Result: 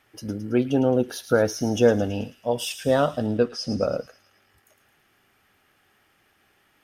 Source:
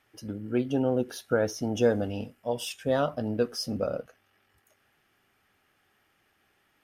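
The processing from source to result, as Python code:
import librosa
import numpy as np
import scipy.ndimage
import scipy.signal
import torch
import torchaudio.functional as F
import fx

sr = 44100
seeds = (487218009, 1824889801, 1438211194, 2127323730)

p1 = fx.air_absorb(x, sr, metres=89.0, at=(3.26, 3.83))
p2 = p1 + fx.echo_wet_highpass(p1, sr, ms=109, feedback_pct=55, hz=3600.0, wet_db=-8.5, dry=0)
y = F.gain(torch.from_numpy(p2), 5.5).numpy()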